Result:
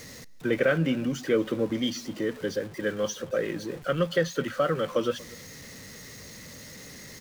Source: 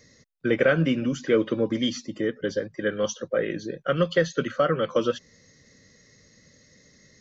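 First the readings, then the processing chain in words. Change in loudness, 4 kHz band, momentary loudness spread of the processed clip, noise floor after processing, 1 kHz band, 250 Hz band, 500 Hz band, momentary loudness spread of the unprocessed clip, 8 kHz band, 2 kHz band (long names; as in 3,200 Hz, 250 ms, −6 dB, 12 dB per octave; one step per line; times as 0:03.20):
−2.5 dB, −2.0 dB, 17 LU, −45 dBFS, −3.0 dB, −2.5 dB, −3.0 dB, 8 LU, can't be measured, −2.5 dB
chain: converter with a step at zero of −36.5 dBFS
single-tap delay 237 ms −23.5 dB
level −3.5 dB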